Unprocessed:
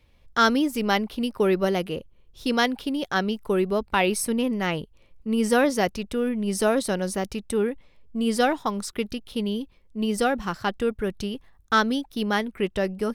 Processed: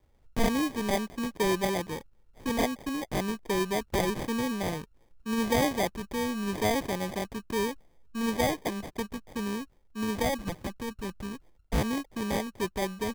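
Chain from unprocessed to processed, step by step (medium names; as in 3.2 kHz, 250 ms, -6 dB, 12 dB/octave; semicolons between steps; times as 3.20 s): 10.59–11.81 s: peaking EQ 580 Hz -12.5 dB -> -3.5 dB 1.4 oct; sample-and-hold 32×; trim -5.5 dB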